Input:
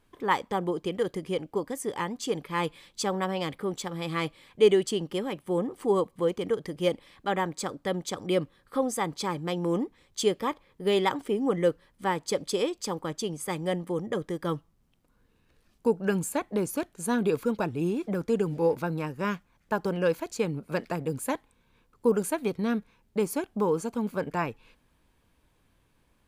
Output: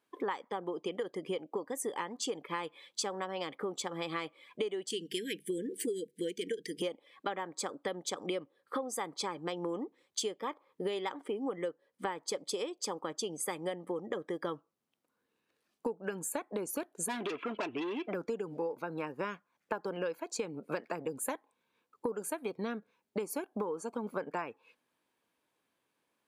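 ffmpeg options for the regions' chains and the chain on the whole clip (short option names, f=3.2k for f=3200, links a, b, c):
-filter_complex "[0:a]asettb=1/sr,asplit=3[a][b][c];[a]atrim=end=4.904[d];[b]atrim=start=4.9:end=6.82,asetpts=PTS-STARTPTS,afade=t=in:d=0.004:c=qsin,afade=t=out:st=1.916:d=0.004:c=qsin,asuperstop=centerf=870:order=20:qfactor=0.81,highshelf=f=3.4k:g=10.5,bandreject=f=50:t=h:w=6,bandreject=f=100:t=h:w=6,bandreject=f=150:t=h:w=6,bandreject=f=200:t=h:w=6[e];[c]atrim=start=6.816[f];[d][e]acrossfade=d=0.004:c1=hsin:c2=qsin[g];[g][f]acrossfade=d=0.004:c1=qsin:c2=hsin,asettb=1/sr,asplit=3[h][i][j];[h]atrim=end=17.084[k];[i]atrim=start=17.08:end=18.14,asetpts=PTS-STARTPTS,afade=t=in:d=0.004:c=qsin,afade=t=out:st=1.056:d=0.004:c=qsin,lowpass=f=2.8k:t=q:w=3.6,aecho=1:1:3:0.48,atrim=end_sample=46746,asoftclip=type=hard:threshold=-27.5dB[l];[j]atrim=start=18.136[m];[k][l]acrossfade=d=0.004:c1=hsin:c2=qsin[n];[n][m]acrossfade=d=0.004:c1=qsin:c2=hsin,highpass=310,afftdn=nr=15:nf=-51,acompressor=threshold=-39dB:ratio=16,volume=6.5dB"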